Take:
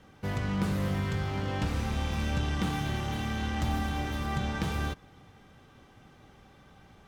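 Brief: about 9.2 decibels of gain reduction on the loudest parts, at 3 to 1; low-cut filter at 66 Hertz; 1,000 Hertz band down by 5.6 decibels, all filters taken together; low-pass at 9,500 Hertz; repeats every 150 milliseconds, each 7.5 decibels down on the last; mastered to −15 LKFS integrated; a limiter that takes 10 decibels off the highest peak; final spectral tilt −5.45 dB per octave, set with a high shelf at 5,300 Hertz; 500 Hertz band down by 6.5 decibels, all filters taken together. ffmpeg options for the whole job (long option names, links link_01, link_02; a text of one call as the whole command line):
ffmpeg -i in.wav -af "highpass=66,lowpass=9500,equalizer=frequency=500:width_type=o:gain=-7.5,equalizer=frequency=1000:width_type=o:gain=-4.5,highshelf=frequency=5300:gain=-4.5,acompressor=threshold=-40dB:ratio=3,alimiter=level_in=14dB:limit=-24dB:level=0:latency=1,volume=-14dB,aecho=1:1:150|300|450|600|750:0.422|0.177|0.0744|0.0312|0.0131,volume=30dB" out.wav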